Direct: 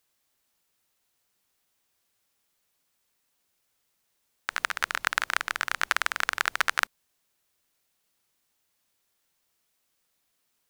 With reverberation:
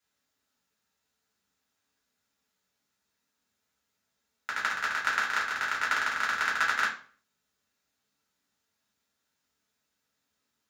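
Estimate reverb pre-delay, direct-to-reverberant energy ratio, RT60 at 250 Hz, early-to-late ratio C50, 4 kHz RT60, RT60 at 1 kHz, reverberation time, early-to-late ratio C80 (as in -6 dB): 3 ms, -5.0 dB, 0.50 s, 7.5 dB, 0.35 s, 0.40 s, 0.45 s, 13.0 dB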